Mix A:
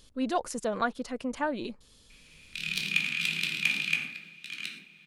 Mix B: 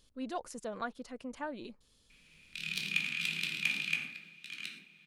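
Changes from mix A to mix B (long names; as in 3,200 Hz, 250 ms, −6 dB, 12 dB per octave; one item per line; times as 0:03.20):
speech −9.5 dB
background −5.0 dB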